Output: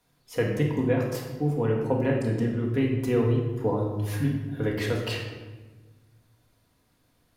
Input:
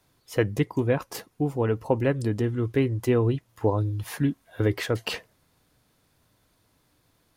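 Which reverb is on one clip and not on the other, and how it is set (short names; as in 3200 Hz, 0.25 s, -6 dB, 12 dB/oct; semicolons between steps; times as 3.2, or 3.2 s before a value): shoebox room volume 850 m³, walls mixed, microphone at 1.8 m; gain -5 dB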